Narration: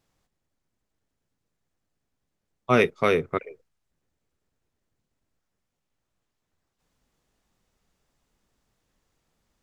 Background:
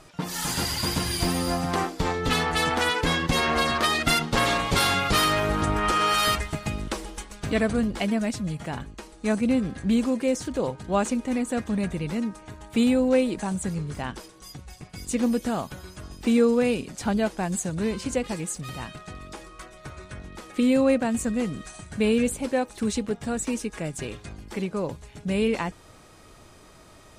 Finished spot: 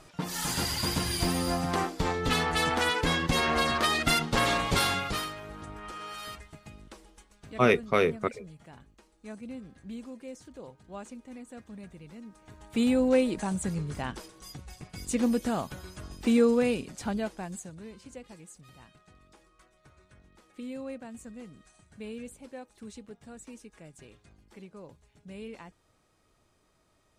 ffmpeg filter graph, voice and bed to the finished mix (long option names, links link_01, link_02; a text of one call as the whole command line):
ffmpeg -i stem1.wav -i stem2.wav -filter_complex "[0:a]adelay=4900,volume=-2.5dB[link_01];[1:a]volume=13dB,afade=type=out:start_time=4.74:duration=0.6:silence=0.16788,afade=type=in:start_time=12.24:duration=0.78:silence=0.158489,afade=type=out:start_time=16.51:duration=1.32:silence=0.158489[link_02];[link_01][link_02]amix=inputs=2:normalize=0" out.wav